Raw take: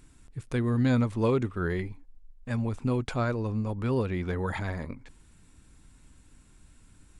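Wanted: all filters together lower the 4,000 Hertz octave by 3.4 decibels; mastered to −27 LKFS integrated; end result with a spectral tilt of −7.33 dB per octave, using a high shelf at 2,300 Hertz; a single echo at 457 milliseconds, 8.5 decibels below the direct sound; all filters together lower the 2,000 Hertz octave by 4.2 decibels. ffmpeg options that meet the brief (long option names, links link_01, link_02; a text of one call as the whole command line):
ffmpeg -i in.wav -af "equalizer=frequency=2000:width_type=o:gain=-6.5,highshelf=frequency=2300:gain=3.5,equalizer=frequency=4000:width_type=o:gain=-5,aecho=1:1:457:0.376,volume=2.5dB" out.wav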